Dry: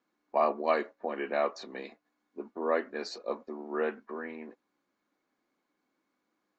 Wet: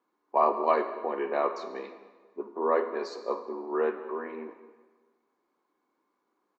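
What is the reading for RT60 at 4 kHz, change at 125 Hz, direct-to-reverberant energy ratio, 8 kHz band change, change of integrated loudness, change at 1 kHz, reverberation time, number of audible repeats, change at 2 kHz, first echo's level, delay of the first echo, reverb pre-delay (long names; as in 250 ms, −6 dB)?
1.0 s, can't be measured, 7.5 dB, can't be measured, +3.0 dB, +5.0 dB, 1.4 s, 1, −1.5 dB, −20.0 dB, 200 ms, 18 ms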